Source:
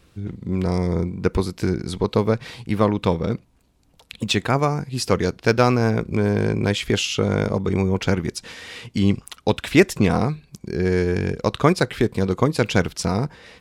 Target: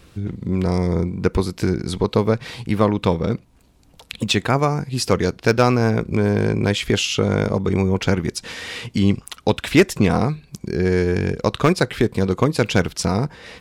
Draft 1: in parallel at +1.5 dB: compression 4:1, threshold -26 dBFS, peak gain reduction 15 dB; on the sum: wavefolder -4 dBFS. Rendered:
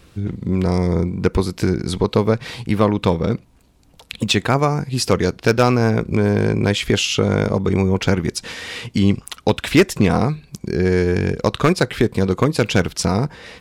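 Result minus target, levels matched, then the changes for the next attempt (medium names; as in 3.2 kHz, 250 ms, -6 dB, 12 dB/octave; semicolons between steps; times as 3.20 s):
compression: peak gain reduction -6.5 dB
change: compression 4:1, threshold -34.5 dBFS, peak gain reduction 21.5 dB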